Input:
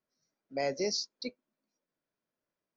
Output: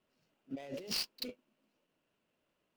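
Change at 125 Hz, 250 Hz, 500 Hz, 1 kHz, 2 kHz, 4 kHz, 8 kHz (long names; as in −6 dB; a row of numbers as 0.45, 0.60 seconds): −5.5 dB, −4.0 dB, −13.0 dB, −13.5 dB, −6.5 dB, −2.0 dB, can't be measured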